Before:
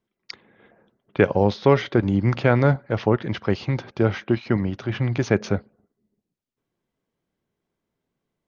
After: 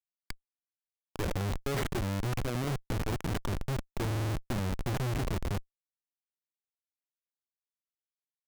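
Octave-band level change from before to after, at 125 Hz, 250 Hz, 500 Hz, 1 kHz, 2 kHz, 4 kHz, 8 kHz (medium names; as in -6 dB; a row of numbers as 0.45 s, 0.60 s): -9.5 dB, -14.0 dB, -16.5 dB, -11.0 dB, -12.0 dB, -6.0 dB, no reading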